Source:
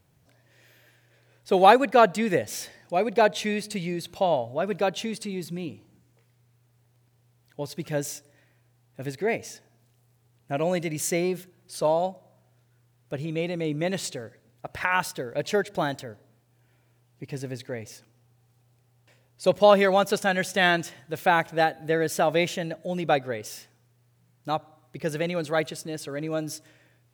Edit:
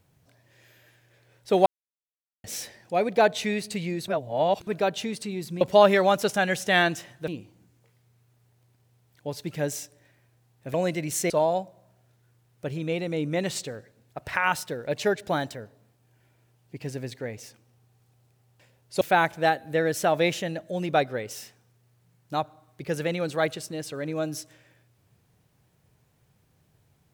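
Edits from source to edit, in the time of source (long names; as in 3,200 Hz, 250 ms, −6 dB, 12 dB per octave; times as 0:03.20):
0:01.66–0:02.44: silence
0:04.08–0:04.67: reverse
0:09.07–0:10.62: remove
0:11.18–0:11.78: remove
0:19.49–0:21.16: move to 0:05.61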